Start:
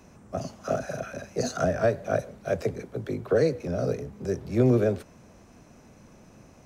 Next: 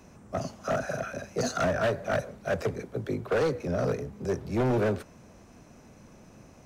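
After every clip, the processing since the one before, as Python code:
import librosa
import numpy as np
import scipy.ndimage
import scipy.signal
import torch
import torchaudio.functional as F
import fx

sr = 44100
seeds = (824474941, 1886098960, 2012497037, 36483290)

y = fx.dynamic_eq(x, sr, hz=1300.0, q=1.0, threshold_db=-40.0, ratio=4.0, max_db=5)
y = np.clip(y, -10.0 ** (-22.0 / 20.0), 10.0 ** (-22.0 / 20.0))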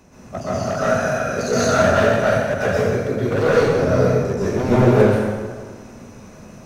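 y = fx.rev_plate(x, sr, seeds[0], rt60_s=1.6, hf_ratio=0.75, predelay_ms=110, drr_db=-9.5)
y = y * 10.0 ** (2.0 / 20.0)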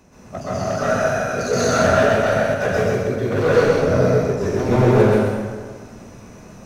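y = x + 10.0 ** (-3.5 / 20.0) * np.pad(x, (int(129 * sr / 1000.0), 0))[:len(x)]
y = y * 10.0 ** (-1.5 / 20.0)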